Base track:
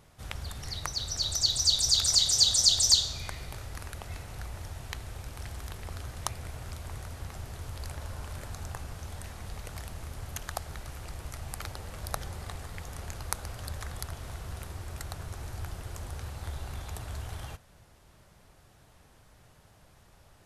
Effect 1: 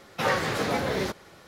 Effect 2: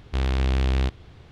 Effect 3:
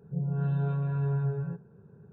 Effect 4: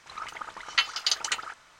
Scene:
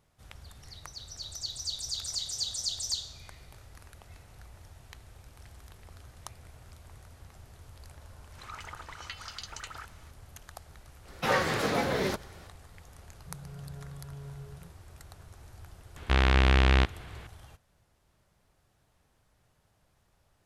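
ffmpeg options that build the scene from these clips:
ffmpeg -i bed.wav -i cue0.wav -i cue1.wav -i cue2.wav -i cue3.wav -filter_complex "[0:a]volume=-11dB[link_01];[4:a]acompressor=threshold=-34dB:ratio=6:attack=3.2:release=140:knee=1:detection=peak[link_02];[2:a]equalizer=frequency=1700:width_type=o:width=2.5:gain=9.5[link_03];[link_02]atrim=end=1.79,asetpts=PTS-STARTPTS,volume=-4dB,afade=type=in:duration=0.004:curve=hsin,afade=type=out:start_time=1.786:duration=0.004:curve=hsin,adelay=8320[link_04];[1:a]atrim=end=1.47,asetpts=PTS-STARTPTS,volume=-1.5dB,afade=type=in:duration=0.05,afade=type=out:start_time=1.42:duration=0.05,adelay=11040[link_05];[3:a]atrim=end=2.12,asetpts=PTS-STARTPTS,volume=-16dB,afade=type=in:duration=0.004:curve=hsin,afade=type=out:start_time=2.116:duration=0.004:curve=hsin,adelay=13140[link_06];[link_03]atrim=end=1.31,asetpts=PTS-STARTPTS,volume=-1dB,afade=type=in:duration=0.004:curve=hsin,afade=type=out:start_time=1.306:duration=0.004:curve=hsin,adelay=15960[link_07];[link_01][link_04][link_05][link_06][link_07]amix=inputs=5:normalize=0" out.wav

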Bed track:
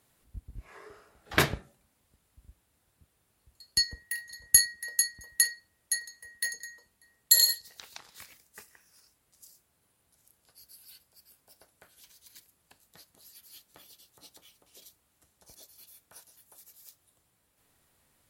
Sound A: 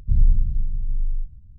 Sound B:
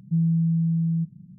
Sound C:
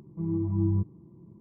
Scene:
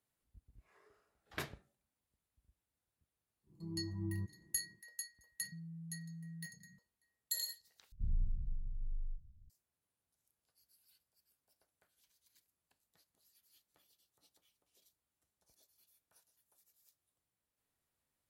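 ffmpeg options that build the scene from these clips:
ffmpeg -i bed.wav -i cue0.wav -i cue1.wav -i cue2.wav -filter_complex "[0:a]volume=-18.5dB[link_01];[2:a]alimiter=level_in=3.5dB:limit=-24dB:level=0:latency=1:release=71,volume=-3.5dB[link_02];[1:a]asoftclip=type=tanh:threshold=-10.5dB[link_03];[link_01]asplit=2[link_04][link_05];[link_04]atrim=end=7.924[link_06];[link_03]atrim=end=1.58,asetpts=PTS-STARTPTS,volume=-16.5dB[link_07];[link_05]atrim=start=9.496[link_08];[3:a]atrim=end=1.4,asetpts=PTS-STARTPTS,volume=-14.5dB,afade=type=in:duration=0.1,afade=type=out:start_time=1.3:duration=0.1,adelay=3430[link_09];[link_02]atrim=end=1.38,asetpts=PTS-STARTPTS,volume=-17.5dB,afade=type=in:duration=0.004:curve=hsin,afade=type=out:start_time=1.376:duration=0.004:curve=hsin,adelay=238581S[link_10];[link_06][link_07]acrossfade=duration=0.004:curve1=hsin:curve2=hsin[link_11];[link_11][link_08]acrossfade=duration=0.004:curve1=hsin:curve2=hsin[link_12];[link_12][link_09][link_10]amix=inputs=3:normalize=0" out.wav

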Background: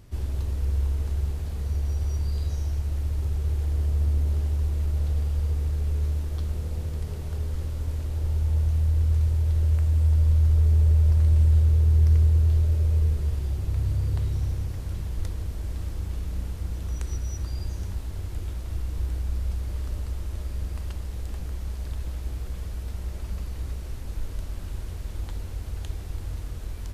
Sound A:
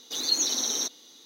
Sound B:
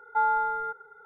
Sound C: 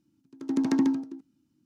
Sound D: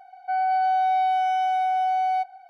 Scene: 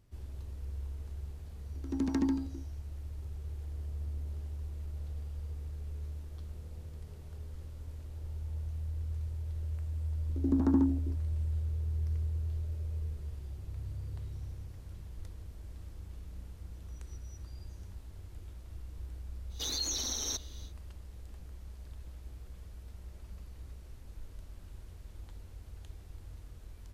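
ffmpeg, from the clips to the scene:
ffmpeg -i bed.wav -i cue0.wav -i cue1.wav -i cue2.wav -filter_complex "[3:a]asplit=2[link_01][link_02];[0:a]volume=-15dB[link_03];[link_02]afwtdn=0.0178[link_04];[1:a]alimiter=limit=-23dB:level=0:latency=1:release=58[link_05];[link_01]atrim=end=1.65,asetpts=PTS-STARTPTS,volume=-6.5dB,afade=type=in:duration=0.004:curve=hsin,afade=type=out:start_time=1.646:duration=0.004:curve=hsin,adelay=1430[link_06];[link_04]atrim=end=1.65,asetpts=PTS-STARTPTS,volume=-3dB,afade=type=in:duration=0.004:curve=hsin,afade=type=out:start_time=1.646:duration=0.004:curve=hsin,adelay=9950[link_07];[link_05]atrim=end=1.25,asetpts=PTS-STARTPTS,volume=-3dB,afade=type=in:duration=0.1,afade=type=out:start_time=1.15:duration=0.1,adelay=19490[link_08];[link_03][link_06][link_07][link_08]amix=inputs=4:normalize=0" out.wav

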